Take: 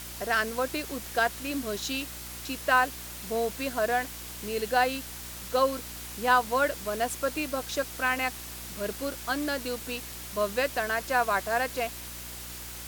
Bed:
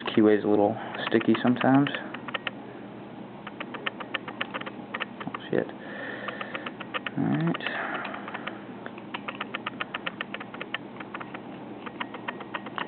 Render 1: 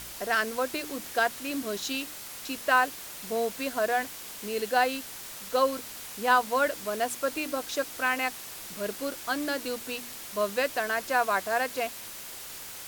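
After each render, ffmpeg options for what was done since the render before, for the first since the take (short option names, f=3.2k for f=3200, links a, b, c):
-af "bandreject=f=60:t=h:w=4,bandreject=f=120:t=h:w=4,bandreject=f=180:t=h:w=4,bandreject=f=240:t=h:w=4,bandreject=f=300:t=h:w=4,bandreject=f=360:t=h:w=4"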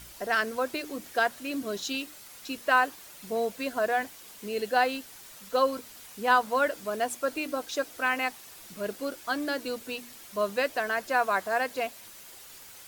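-af "afftdn=nr=8:nf=-42"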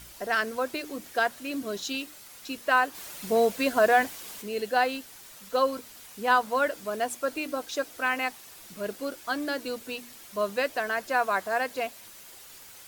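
-filter_complex "[0:a]asplit=3[a][b][c];[a]afade=t=out:st=2.94:d=0.02[d];[b]acontrast=66,afade=t=in:st=2.94:d=0.02,afade=t=out:st=4.41:d=0.02[e];[c]afade=t=in:st=4.41:d=0.02[f];[d][e][f]amix=inputs=3:normalize=0"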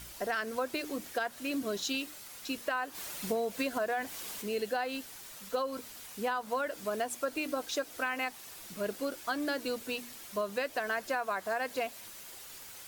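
-af "alimiter=limit=-18dB:level=0:latency=1:release=217,acompressor=threshold=-29dB:ratio=6"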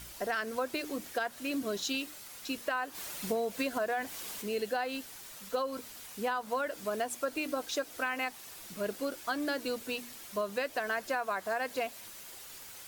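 -af anull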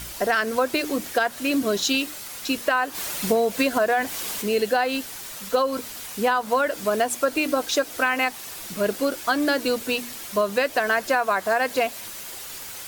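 -af "volume=11.5dB"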